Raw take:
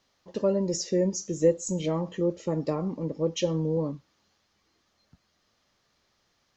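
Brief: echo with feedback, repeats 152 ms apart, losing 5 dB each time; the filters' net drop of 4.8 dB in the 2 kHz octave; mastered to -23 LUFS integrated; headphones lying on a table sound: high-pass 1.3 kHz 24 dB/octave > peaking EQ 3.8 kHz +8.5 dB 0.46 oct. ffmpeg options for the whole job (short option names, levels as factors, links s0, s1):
-af "highpass=f=1300:w=0.5412,highpass=f=1300:w=1.3066,equalizer=f=2000:t=o:g=-7,equalizer=f=3800:t=o:w=0.46:g=8.5,aecho=1:1:152|304|456|608|760|912|1064:0.562|0.315|0.176|0.0988|0.0553|0.031|0.0173,volume=5.01"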